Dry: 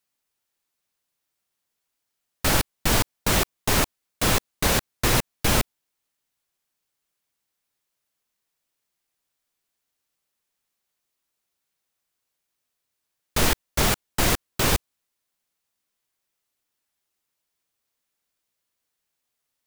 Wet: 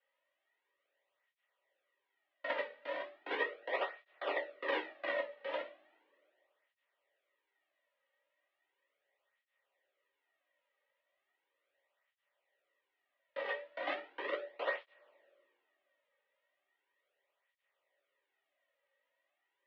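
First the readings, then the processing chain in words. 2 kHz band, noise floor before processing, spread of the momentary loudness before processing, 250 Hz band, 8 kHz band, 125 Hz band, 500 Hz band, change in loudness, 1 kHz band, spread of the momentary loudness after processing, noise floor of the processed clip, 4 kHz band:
-11.5 dB, -81 dBFS, 3 LU, -24.0 dB, under -40 dB, under -40 dB, -9.0 dB, -16.5 dB, -14.0 dB, 6 LU, under -85 dBFS, -22.0 dB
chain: compressor with a negative ratio -26 dBFS, ratio -0.5; peak limiter -19.5 dBFS, peak gain reduction 9.5 dB; level held to a coarse grid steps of 10 dB; saturation -27 dBFS, distortion -15 dB; small resonant body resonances 490/1800 Hz, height 16 dB, ringing for 50 ms; mistuned SSB +90 Hz 250–3200 Hz; two-slope reverb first 0.35 s, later 2.7 s, from -28 dB, DRR 1 dB; cancelling through-zero flanger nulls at 0.37 Hz, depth 3 ms; trim +1 dB

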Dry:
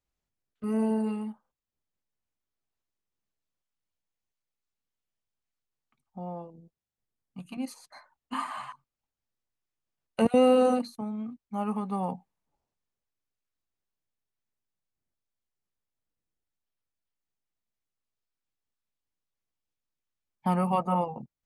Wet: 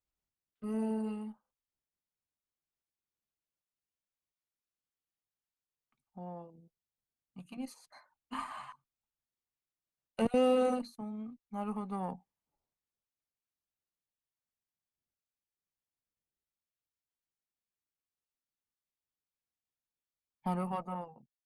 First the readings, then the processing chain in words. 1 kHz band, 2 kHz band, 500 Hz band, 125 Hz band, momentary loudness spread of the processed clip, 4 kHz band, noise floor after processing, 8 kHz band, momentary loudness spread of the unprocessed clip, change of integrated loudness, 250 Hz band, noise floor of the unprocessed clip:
-8.5 dB, -6.0 dB, -7.0 dB, -8.5 dB, 20 LU, -6.0 dB, under -85 dBFS, -6.5 dB, 18 LU, -7.5 dB, -7.5 dB, under -85 dBFS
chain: fade out at the end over 1.05 s; Chebyshev shaper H 8 -29 dB, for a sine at -10.5 dBFS; trim -7 dB

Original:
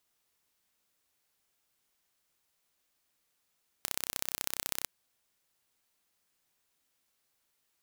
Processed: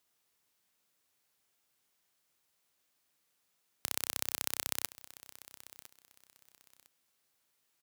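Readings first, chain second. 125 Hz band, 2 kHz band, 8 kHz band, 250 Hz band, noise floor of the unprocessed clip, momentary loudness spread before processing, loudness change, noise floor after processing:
-1.0 dB, 0.0 dB, 0.0 dB, 0.0 dB, -78 dBFS, 7 LU, 0.0 dB, -78 dBFS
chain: high-pass 74 Hz 12 dB/octave; on a send: feedback delay 1006 ms, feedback 26%, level -17.5 dB

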